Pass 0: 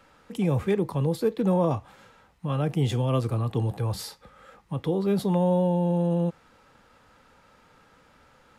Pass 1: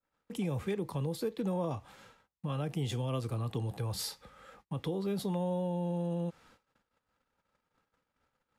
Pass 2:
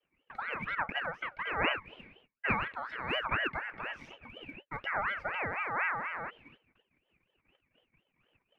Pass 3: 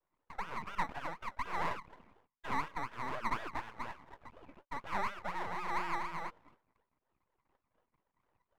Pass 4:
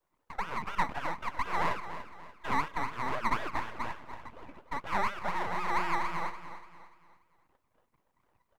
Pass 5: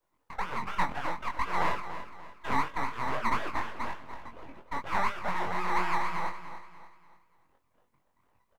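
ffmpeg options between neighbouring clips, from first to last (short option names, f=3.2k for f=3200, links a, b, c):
-af "agate=range=-31dB:threshold=-54dB:ratio=16:detection=peak,acompressor=threshold=-29dB:ratio=2.5,adynamicequalizer=threshold=0.00316:dfrequency=2300:dqfactor=0.7:tfrequency=2300:tqfactor=0.7:attack=5:release=100:ratio=0.375:range=2.5:mode=boostabove:tftype=highshelf,volume=-4dB"
-af "lowpass=f=1.2k:t=q:w=6.7,aphaser=in_gain=1:out_gain=1:delay=3.4:decay=0.51:speed=1.2:type=sinusoidal,aeval=exprs='val(0)*sin(2*PI*1400*n/s+1400*0.3/4.1*sin(2*PI*4.1*n/s))':c=same,volume=-1.5dB"
-af "asoftclip=type=tanh:threshold=-25dB,lowpass=f=1k:t=q:w=5.3,aeval=exprs='max(val(0),0)':c=same,volume=-3.5dB"
-af "aecho=1:1:291|582|873|1164:0.251|0.098|0.0382|0.0149,volume=5.5dB"
-filter_complex "[0:a]asplit=2[a][b];[b]adelay=22,volume=-4dB[c];[a][c]amix=inputs=2:normalize=0"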